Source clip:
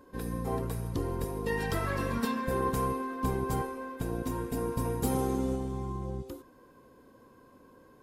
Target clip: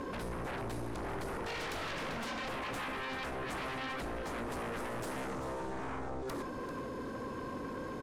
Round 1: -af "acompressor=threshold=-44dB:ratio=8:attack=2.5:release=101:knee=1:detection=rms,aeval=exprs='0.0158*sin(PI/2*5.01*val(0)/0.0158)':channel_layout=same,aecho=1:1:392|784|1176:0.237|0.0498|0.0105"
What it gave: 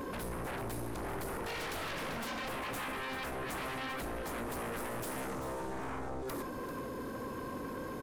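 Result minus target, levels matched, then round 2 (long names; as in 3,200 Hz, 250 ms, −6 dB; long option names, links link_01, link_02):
8,000 Hz band +4.0 dB
-af "acompressor=threshold=-44dB:ratio=8:attack=2.5:release=101:knee=1:detection=rms,lowpass=7300,aeval=exprs='0.0158*sin(PI/2*5.01*val(0)/0.0158)':channel_layout=same,aecho=1:1:392|784|1176:0.237|0.0498|0.0105"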